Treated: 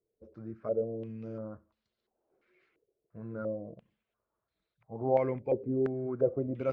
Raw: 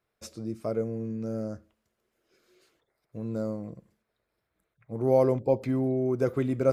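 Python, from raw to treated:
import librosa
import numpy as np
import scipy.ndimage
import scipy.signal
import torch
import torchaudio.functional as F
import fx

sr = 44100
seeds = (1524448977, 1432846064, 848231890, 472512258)

y = fx.spec_quant(x, sr, step_db=15)
y = fx.filter_held_lowpass(y, sr, hz=2.9, low_hz=430.0, high_hz=4100.0)
y = F.gain(torch.from_numpy(y), -8.0).numpy()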